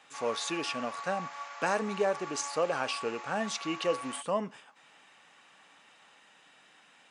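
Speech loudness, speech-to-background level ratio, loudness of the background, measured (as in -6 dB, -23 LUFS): -33.0 LUFS, 8.5 dB, -41.5 LUFS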